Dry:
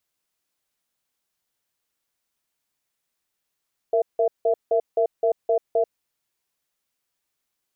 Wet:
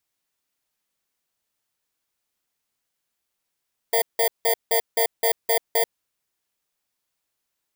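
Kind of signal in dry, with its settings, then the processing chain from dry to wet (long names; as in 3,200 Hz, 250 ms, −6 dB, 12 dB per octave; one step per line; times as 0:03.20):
tone pair in a cadence 462 Hz, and 667 Hz, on 0.09 s, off 0.17 s, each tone −19.5 dBFS 2.00 s
samples in bit-reversed order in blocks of 32 samples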